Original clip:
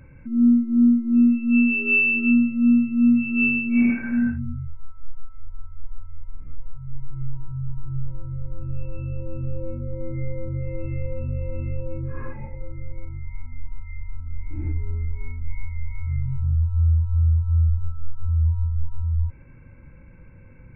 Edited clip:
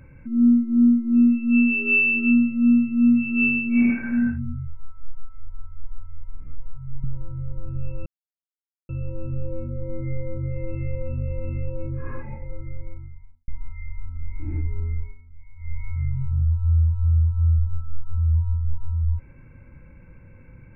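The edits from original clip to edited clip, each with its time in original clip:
7.04–7.98 cut
9 insert silence 0.83 s
12.79–13.59 studio fade out
15.1–15.83 dip -17 dB, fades 0.16 s

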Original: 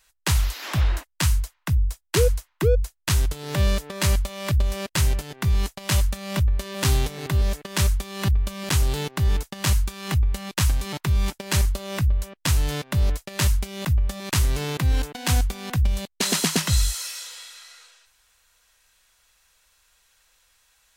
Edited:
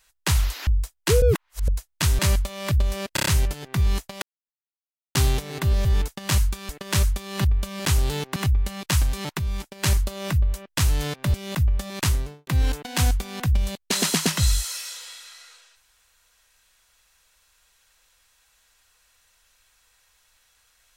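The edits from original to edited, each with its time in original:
0.67–1.74 cut
2.29–2.75 reverse
3.26–3.99 cut
4.94 stutter 0.03 s, 5 plays
5.9–6.83 mute
9.2–10.04 move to 7.53
11.07–11.51 gain -6 dB
13.02–13.64 cut
14.31–14.77 studio fade out

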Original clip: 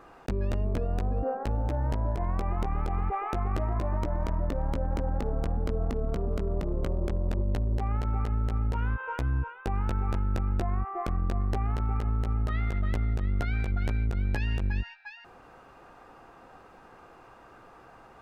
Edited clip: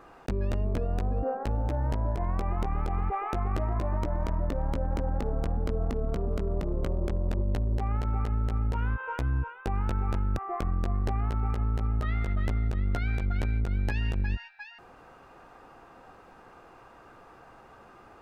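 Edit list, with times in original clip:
10.37–10.83 cut

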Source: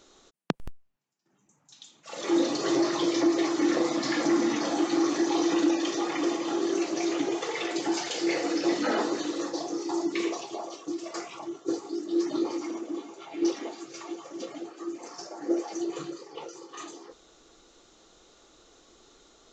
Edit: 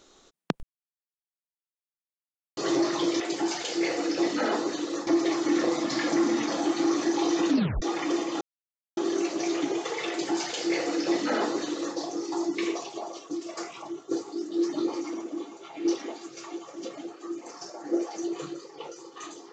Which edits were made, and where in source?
0.63–2.57 mute
5.63 tape stop 0.32 s
6.54 insert silence 0.56 s
7.66–9.53 copy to 3.2

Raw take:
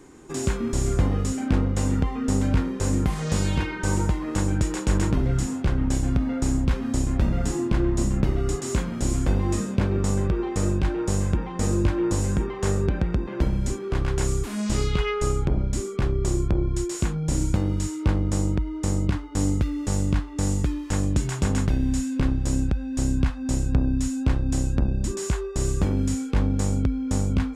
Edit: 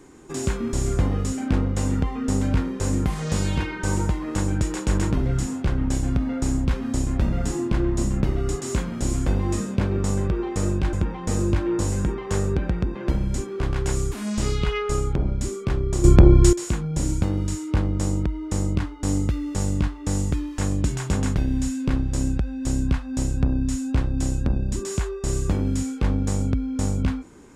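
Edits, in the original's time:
10.93–11.25 cut
16.36–16.85 gain +11.5 dB

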